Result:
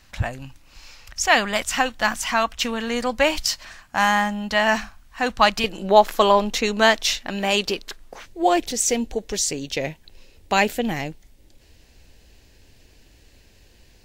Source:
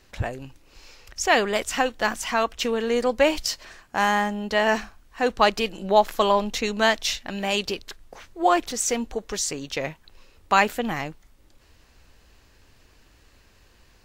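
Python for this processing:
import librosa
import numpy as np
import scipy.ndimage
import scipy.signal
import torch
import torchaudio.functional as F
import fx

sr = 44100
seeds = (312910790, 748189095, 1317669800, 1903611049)

y = fx.peak_eq(x, sr, hz=fx.steps((0.0, 410.0), (5.64, 75.0), (8.26, 1200.0)), db=-12.5, octaves=0.77)
y = F.gain(torch.from_numpy(y), 4.0).numpy()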